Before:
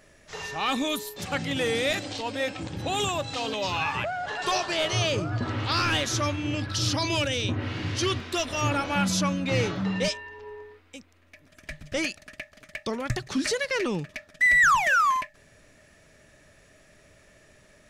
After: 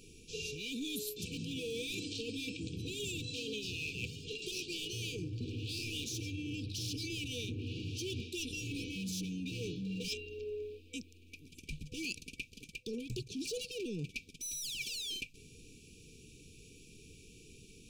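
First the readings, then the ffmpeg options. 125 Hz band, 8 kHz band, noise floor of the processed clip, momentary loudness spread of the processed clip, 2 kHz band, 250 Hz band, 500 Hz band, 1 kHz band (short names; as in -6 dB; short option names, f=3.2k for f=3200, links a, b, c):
-11.0 dB, -8.5 dB, -58 dBFS, 18 LU, -18.5 dB, -10.5 dB, -13.5 dB, under -40 dB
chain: -af "asoftclip=type=hard:threshold=-25.5dB,afftfilt=real='re*(1-between(b*sr/4096,500,2300))':imag='im*(1-between(b*sr/4096,500,2300))':win_size=4096:overlap=0.75,areverse,acompressor=threshold=-40dB:ratio=12,areverse,bandreject=f=54.59:t=h:w=4,bandreject=f=109.18:t=h:w=4,volume=3dB"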